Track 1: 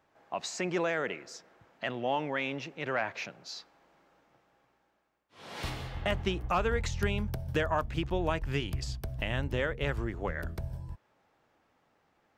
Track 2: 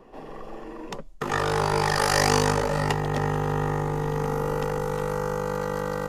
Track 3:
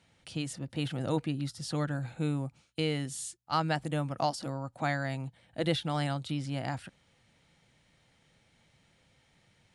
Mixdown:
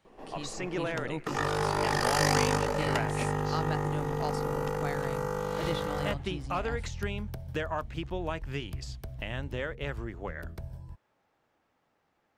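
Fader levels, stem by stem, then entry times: -3.5, -5.0, -6.5 dB; 0.00, 0.05, 0.00 s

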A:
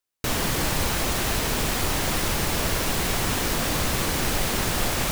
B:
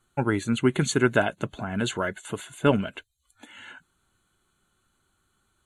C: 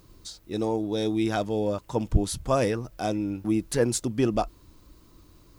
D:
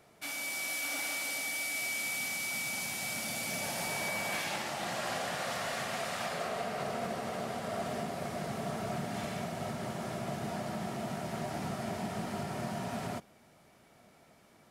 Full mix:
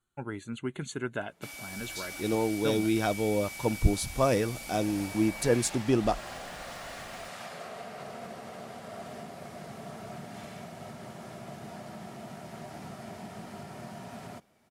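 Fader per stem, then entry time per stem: off, -13.0 dB, -1.5 dB, -6.0 dB; off, 0.00 s, 1.70 s, 1.20 s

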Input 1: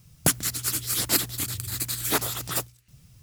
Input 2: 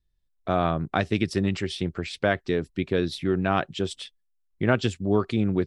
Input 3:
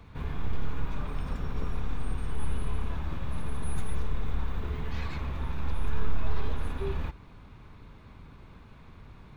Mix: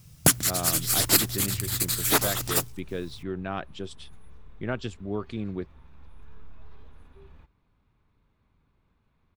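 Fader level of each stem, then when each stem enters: +2.5, -9.0, -19.5 dB; 0.00, 0.00, 0.35 s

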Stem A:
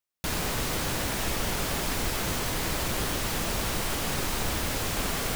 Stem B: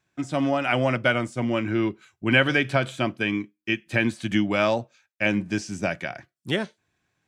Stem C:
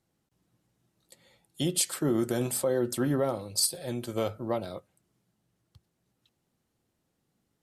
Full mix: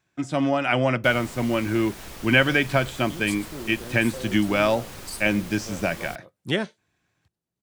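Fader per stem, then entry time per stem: -11.0, +1.0, -10.5 dB; 0.80, 0.00, 1.50 s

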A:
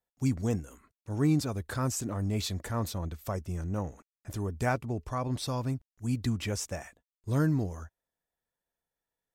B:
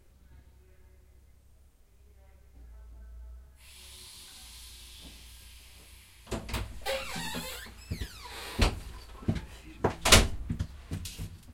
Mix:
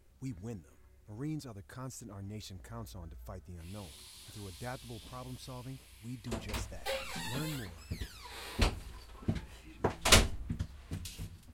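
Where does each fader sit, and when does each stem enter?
-13.5, -4.0 dB; 0.00, 0.00 s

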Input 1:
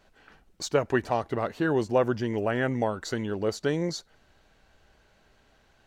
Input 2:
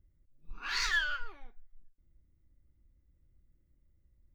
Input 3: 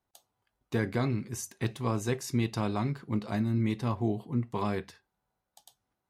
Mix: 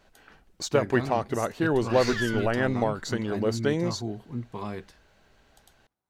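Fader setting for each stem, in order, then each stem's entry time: +1.0, -1.5, -4.0 dB; 0.00, 1.25, 0.00 s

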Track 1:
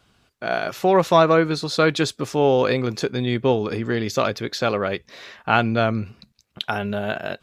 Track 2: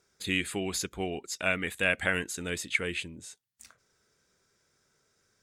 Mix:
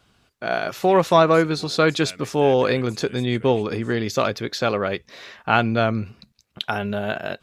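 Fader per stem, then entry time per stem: 0.0, -12.0 dB; 0.00, 0.60 s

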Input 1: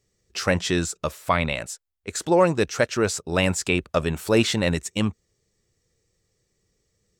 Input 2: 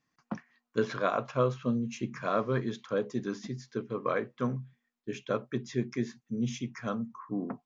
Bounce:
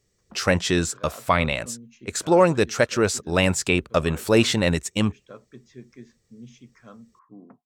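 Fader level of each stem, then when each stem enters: +1.5, -12.5 dB; 0.00, 0.00 s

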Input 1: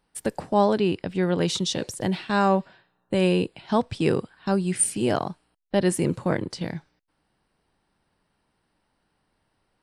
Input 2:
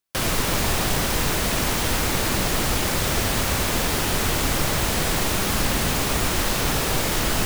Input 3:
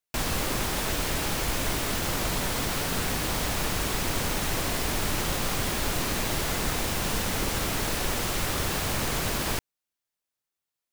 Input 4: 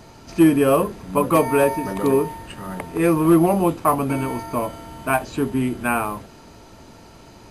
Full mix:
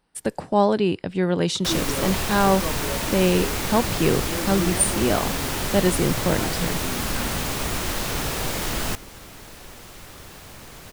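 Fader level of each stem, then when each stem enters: +1.5, -4.0, -14.0, -15.0 dB; 0.00, 1.50, 1.60, 1.30 s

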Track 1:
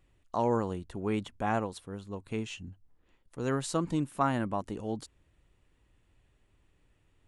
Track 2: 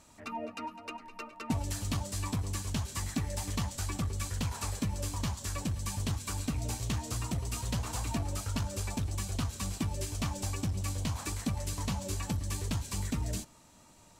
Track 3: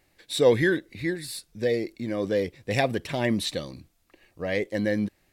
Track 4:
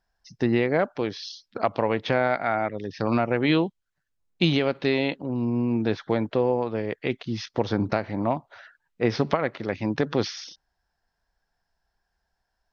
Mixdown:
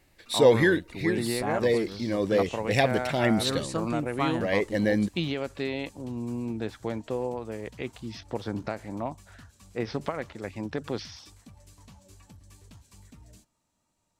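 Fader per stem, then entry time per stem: -1.5, -18.0, +1.0, -8.0 dB; 0.00, 0.00, 0.00, 0.75 s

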